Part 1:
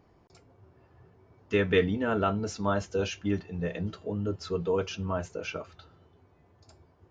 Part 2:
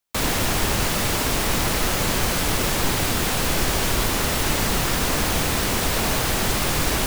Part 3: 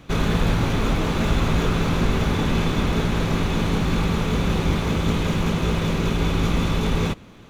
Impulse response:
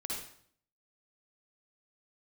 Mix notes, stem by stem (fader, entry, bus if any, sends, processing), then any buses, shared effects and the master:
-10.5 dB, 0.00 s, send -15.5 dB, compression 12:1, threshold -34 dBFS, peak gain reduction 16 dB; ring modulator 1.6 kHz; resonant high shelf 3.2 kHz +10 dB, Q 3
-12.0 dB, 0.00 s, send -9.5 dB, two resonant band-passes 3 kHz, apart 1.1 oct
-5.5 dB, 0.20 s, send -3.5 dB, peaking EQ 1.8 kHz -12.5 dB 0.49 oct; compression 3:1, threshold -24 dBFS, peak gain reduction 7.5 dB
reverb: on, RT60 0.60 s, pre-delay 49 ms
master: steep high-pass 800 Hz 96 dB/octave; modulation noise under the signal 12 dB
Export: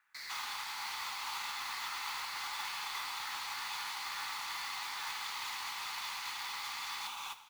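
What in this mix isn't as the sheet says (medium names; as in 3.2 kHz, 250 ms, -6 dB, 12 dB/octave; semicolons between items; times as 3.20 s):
stem 1: missing resonant high shelf 3.2 kHz +10 dB, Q 3; reverb return -7.5 dB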